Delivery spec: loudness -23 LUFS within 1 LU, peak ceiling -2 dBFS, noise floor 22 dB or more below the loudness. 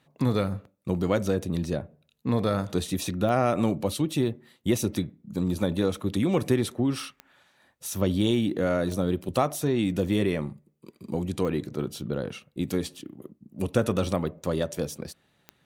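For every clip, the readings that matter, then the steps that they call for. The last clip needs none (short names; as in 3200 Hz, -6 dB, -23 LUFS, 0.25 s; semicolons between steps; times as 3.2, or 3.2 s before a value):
clicks 5; loudness -27.5 LUFS; peak -8.5 dBFS; loudness target -23.0 LUFS
-> de-click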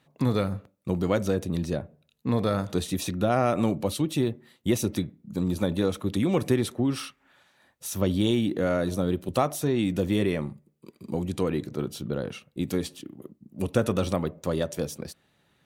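clicks 0; loudness -27.5 LUFS; peak -8.5 dBFS; loudness target -23.0 LUFS
-> gain +4.5 dB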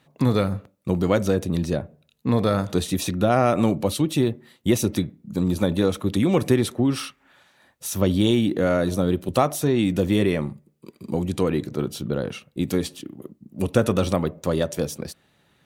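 loudness -23.0 LUFS; peak -4.0 dBFS; noise floor -64 dBFS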